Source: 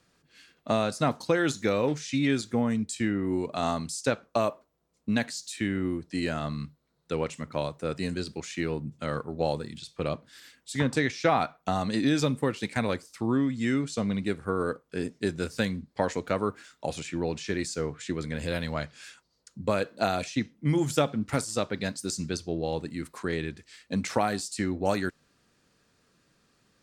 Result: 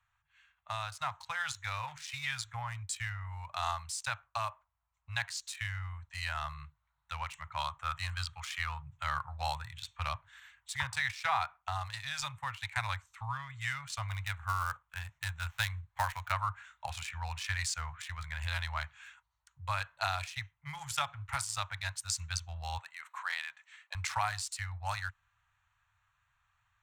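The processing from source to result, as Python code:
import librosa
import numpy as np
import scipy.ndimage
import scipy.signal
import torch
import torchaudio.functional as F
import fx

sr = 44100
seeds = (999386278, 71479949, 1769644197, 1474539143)

y = fx.small_body(x, sr, hz=(1200.0, 3200.0), ring_ms=20, db=10, at=(7.59, 8.82))
y = fx.dead_time(y, sr, dead_ms=0.063, at=(14.08, 16.32))
y = fx.highpass(y, sr, hz=350.0, slope=24, at=(22.78, 23.95))
y = fx.wiener(y, sr, points=9)
y = scipy.signal.sosfilt(scipy.signal.ellip(3, 1.0, 50, [100.0, 900.0], 'bandstop', fs=sr, output='sos'), y)
y = fx.rider(y, sr, range_db=10, speed_s=2.0)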